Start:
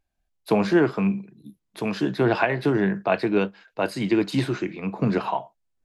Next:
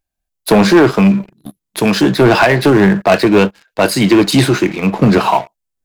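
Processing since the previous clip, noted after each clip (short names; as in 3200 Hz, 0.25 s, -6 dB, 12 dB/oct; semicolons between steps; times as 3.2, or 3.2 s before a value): high shelf 6100 Hz +11 dB; sample leveller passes 3; gain +3.5 dB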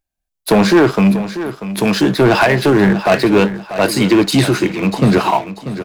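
feedback echo 0.64 s, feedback 29%, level -12.5 dB; gain -2 dB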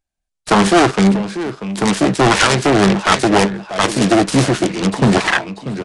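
self-modulated delay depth 0.58 ms; downsampling 22050 Hz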